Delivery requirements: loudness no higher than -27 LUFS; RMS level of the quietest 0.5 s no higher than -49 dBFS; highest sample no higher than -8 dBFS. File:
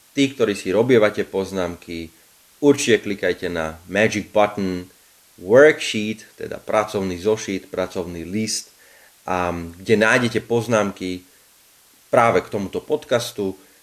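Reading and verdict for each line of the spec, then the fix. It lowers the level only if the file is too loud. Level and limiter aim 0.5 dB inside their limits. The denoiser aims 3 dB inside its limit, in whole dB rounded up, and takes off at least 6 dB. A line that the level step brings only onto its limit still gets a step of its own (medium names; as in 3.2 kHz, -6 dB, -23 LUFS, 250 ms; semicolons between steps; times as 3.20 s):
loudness -20.0 LUFS: fail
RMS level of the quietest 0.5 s -53 dBFS: pass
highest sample -2.0 dBFS: fail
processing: trim -7.5 dB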